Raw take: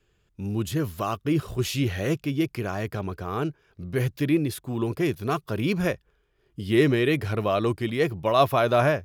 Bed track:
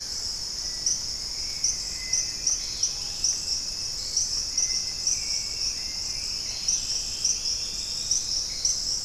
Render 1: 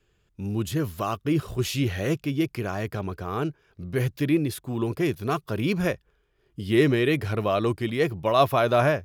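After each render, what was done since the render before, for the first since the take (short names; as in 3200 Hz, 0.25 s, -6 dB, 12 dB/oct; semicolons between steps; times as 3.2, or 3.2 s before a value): nothing audible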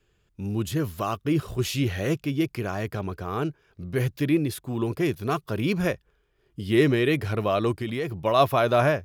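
7.71–8.14 compressor, threshold -24 dBFS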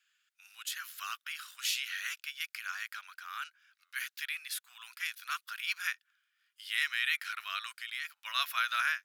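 elliptic high-pass 1400 Hz, stop band 80 dB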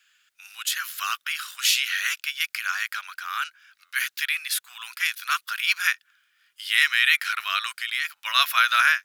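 gain +12 dB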